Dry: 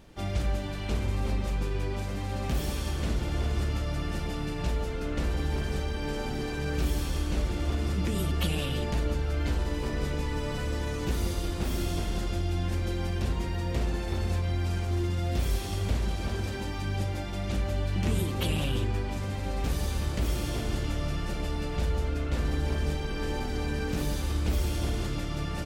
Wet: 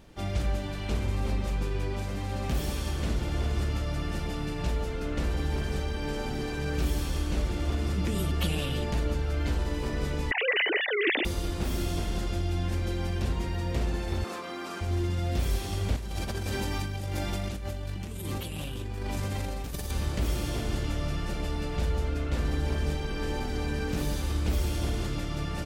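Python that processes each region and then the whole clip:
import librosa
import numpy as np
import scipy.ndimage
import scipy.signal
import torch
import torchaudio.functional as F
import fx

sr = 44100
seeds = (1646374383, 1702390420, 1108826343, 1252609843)

y = fx.chain(x, sr, fx.sine_speech(),
    fx.highpass(hz=240.0, slope=12),
    fx.high_shelf_res(hz=1600.0, db=7.5, q=3.0), at=(10.31, 11.25))
y = fx.chain(y, sr, fx.highpass(hz=240.0, slope=24),
    fx.peak_eq(hz=1200.0, db=13.0, octaves=0.36), at=(14.24, 14.81))
y = fx.chain(y, sr, fx.high_shelf(hz=8300.0, db=9.5),
    fx.over_compress(threshold_db=-33.0, ratio=-1.0), at=(15.96, 19.91))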